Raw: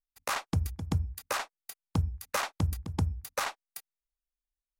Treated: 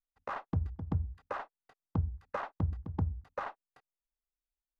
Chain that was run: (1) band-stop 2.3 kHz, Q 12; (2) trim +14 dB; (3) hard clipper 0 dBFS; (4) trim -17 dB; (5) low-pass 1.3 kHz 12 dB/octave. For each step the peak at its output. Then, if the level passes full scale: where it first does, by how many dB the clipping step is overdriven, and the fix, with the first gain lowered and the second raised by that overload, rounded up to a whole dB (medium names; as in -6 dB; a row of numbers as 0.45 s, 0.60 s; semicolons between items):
-17.0 dBFS, -3.0 dBFS, -3.0 dBFS, -20.0 dBFS, -20.0 dBFS; nothing clips